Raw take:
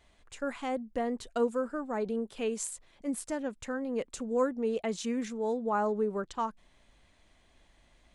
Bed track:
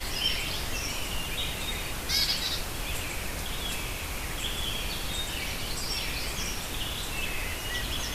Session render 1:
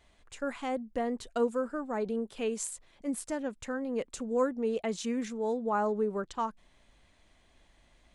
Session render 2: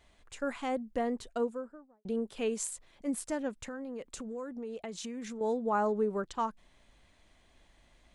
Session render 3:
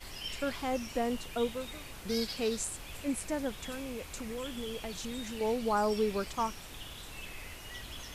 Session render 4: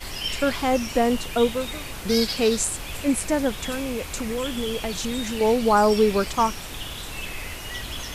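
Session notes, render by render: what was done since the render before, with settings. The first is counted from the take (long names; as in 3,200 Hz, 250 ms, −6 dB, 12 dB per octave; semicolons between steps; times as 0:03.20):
no processing that can be heard
0:01.04–0:02.05: fade out and dull; 0:03.54–0:05.41: downward compressor, threshold −37 dBFS
mix in bed track −12.5 dB
level +11.5 dB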